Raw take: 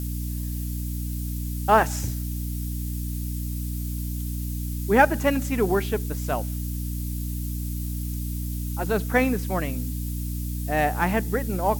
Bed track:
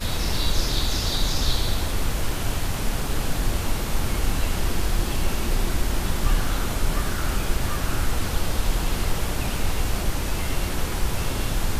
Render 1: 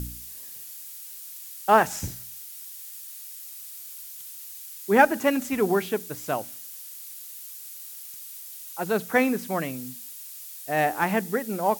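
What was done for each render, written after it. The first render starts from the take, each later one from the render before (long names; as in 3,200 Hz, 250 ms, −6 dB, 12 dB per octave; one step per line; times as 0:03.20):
hum removal 60 Hz, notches 5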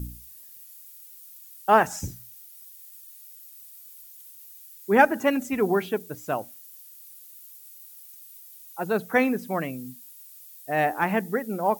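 broadband denoise 11 dB, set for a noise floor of −41 dBFS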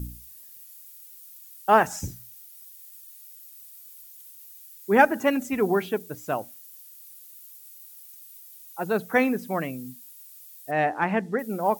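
0:10.71–0:11.39: high-frequency loss of the air 84 metres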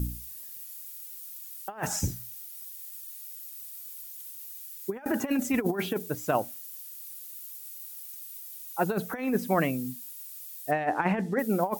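compressor whose output falls as the input rises −26 dBFS, ratio −0.5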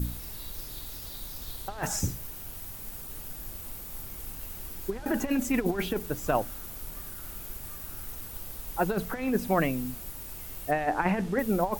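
mix in bed track −20.5 dB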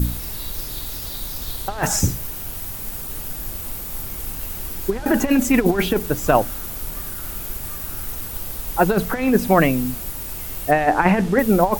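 level +10.5 dB
brickwall limiter −2 dBFS, peak gain reduction 1 dB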